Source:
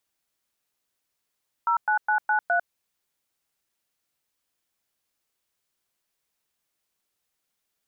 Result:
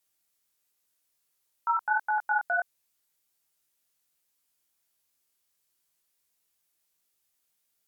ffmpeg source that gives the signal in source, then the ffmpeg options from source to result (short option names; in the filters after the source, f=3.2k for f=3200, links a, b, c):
-f lavfi -i "aevalsrc='0.0794*clip(min(mod(t,0.207),0.099-mod(t,0.207))/0.002,0,1)*(eq(floor(t/0.207),0)*(sin(2*PI*941*mod(t,0.207))+sin(2*PI*1336*mod(t,0.207)))+eq(floor(t/0.207),1)*(sin(2*PI*852*mod(t,0.207))+sin(2*PI*1477*mod(t,0.207)))+eq(floor(t/0.207),2)*(sin(2*PI*852*mod(t,0.207))+sin(2*PI*1477*mod(t,0.207)))+eq(floor(t/0.207),3)*(sin(2*PI*852*mod(t,0.207))+sin(2*PI*1477*mod(t,0.207)))+eq(floor(t/0.207),4)*(sin(2*PI*697*mod(t,0.207))+sin(2*PI*1477*mod(t,0.207))))':d=1.035:s=44100"
-af "aemphasis=mode=production:type=cd,flanger=delay=18.5:depth=5.5:speed=1.4"